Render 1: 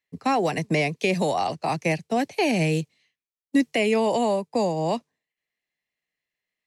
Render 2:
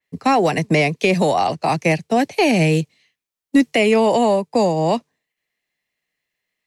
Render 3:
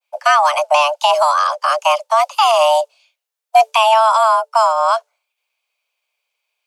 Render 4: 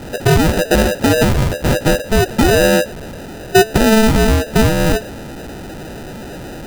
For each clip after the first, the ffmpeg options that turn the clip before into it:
-af "acontrast=82,adynamicequalizer=threshold=0.0251:dfrequency=3600:dqfactor=0.7:tfrequency=3600:tqfactor=0.7:attack=5:release=100:ratio=0.375:range=1.5:mode=cutabove:tftype=highshelf"
-af "adynamicequalizer=threshold=0.02:dfrequency=1800:dqfactor=0.87:tfrequency=1800:tqfactor=0.87:attack=5:release=100:ratio=0.375:range=2:mode=cutabove:tftype=bell,afreqshift=440,volume=3.5dB"
-af "aeval=exprs='val(0)+0.5*0.0668*sgn(val(0))':c=same,acrusher=samples=40:mix=1:aa=0.000001"

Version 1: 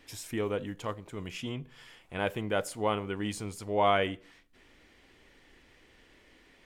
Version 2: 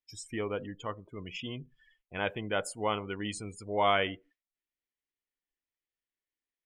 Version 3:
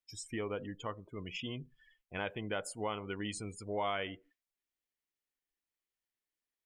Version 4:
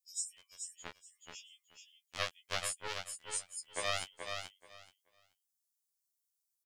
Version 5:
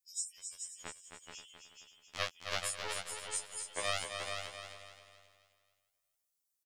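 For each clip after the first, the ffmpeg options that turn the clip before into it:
-af "agate=range=-7dB:threshold=-56dB:ratio=16:detection=peak,afftdn=nr=33:nf=-43,tiltshelf=f=1.2k:g=-3.5"
-af "acompressor=threshold=-34dB:ratio=2.5,volume=-1dB"
-filter_complex "[0:a]acrossover=split=4900[a][b];[a]acrusher=bits=3:mix=0:aa=0.5[c];[c][b]amix=inputs=2:normalize=0,aecho=1:1:430|860|1290:0.501|0.0902|0.0162,afftfilt=real='re*2*eq(mod(b,4),0)':imag='im*2*eq(mod(b,4),0)':win_size=2048:overlap=0.75,volume=11dB"
-af "aecho=1:1:266|532|798|1064|1330:0.447|0.179|0.0715|0.0286|0.0114"

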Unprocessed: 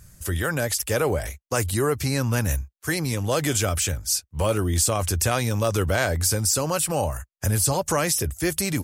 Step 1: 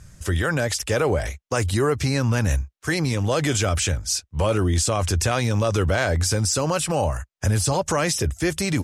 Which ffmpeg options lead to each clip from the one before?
-filter_complex "[0:a]lowpass=6.6k,bandreject=f=4.5k:w=25,asplit=2[a][b];[b]alimiter=limit=-18dB:level=0:latency=1:release=38,volume=3dB[c];[a][c]amix=inputs=2:normalize=0,volume=-3.5dB"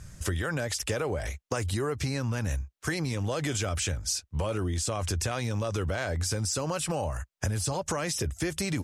-af "acompressor=threshold=-27dB:ratio=6"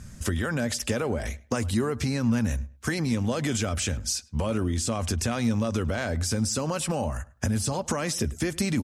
-filter_complex "[0:a]equalizer=f=230:t=o:w=0.31:g=13.5,asplit=2[a][b];[b]adelay=104,lowpass=f=2.6k:p=1,volume=-20.5dB,asplit=2[c][d];[d]adelay=104,lowpass=f=2.6k:p=1,volume=0.26[e];[a][c][e]amix=inputs=3:normalize=0,acontrast=65,volume=-5dB"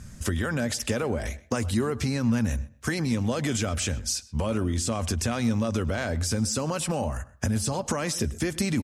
-filter_complex "[0:a]asplit=2[a][b];[b]adelay=127,lowpass=f=3.6k:p=1,volume=-20dB,asplit=2[c][d];[d]adelay=127,lowpass=f=3.6k:p=1,volume=0.19[e];[a][c][e]amix=inputs=3:normalize=0"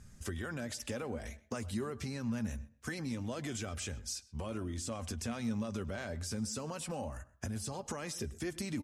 -af "flanger=delay=2.4:depth=2.7:regen=69:speed=0.25:shape=sinusoidal,volume=-7.5dB"

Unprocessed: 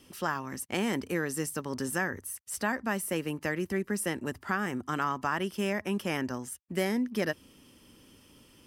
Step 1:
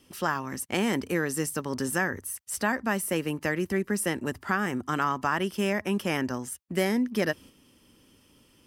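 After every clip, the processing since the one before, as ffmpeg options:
-af "agate=range=-6dB:threshold=-50dB:ratio=16:detection=peak,volume=3.5dB"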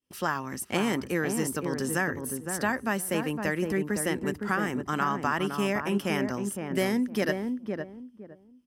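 -filter_complex "[0:a]agate=range=-33dB:threshold=-46dB:ratio=3:detection=peak,asplit=2[a][b];[b]adelay=512,lowpass=f=850:p=1,volume=-4dB,asplit=2[c][d];[d]adelay=512,lowpass=f=850:p=1,volume=0.25,asplit=2[e][f];[f]adelay=512,lowpass=f=850:p=1,volume=0.25[g];[a][c][e][g]amix=inputs=4:normalize=0,volume=-1dB"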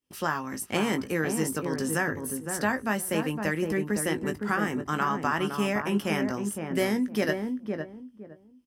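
-filter_complex "[0:a]asplit=2[a][b];[b]adelay=19,volume=-9dB[c];[a][c]amix=inputs=2:normalize=0"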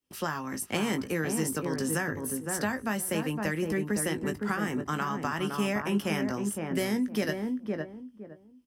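-filter_complex "[0:a]acrossover=split=210|3000[a][b][c];[b]acompressor=threshold=-28dB:ratio=6[d];[a][d][c]amix=inputs=3:normalize=0"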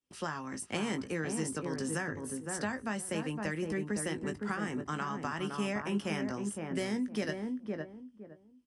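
-af "aresample=22050,aresample=44100,volume=-5dB"

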